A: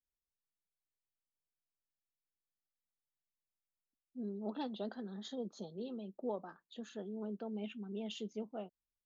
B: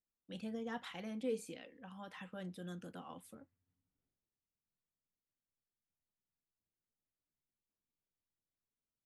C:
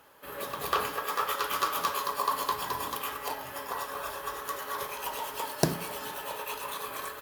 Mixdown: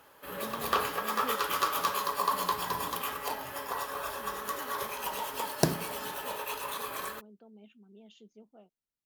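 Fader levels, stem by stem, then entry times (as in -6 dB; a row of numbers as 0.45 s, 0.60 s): -12.5 dB, -2.0 dB, 0.0 dB; 0.00 s, 0.00 s, 0.00 s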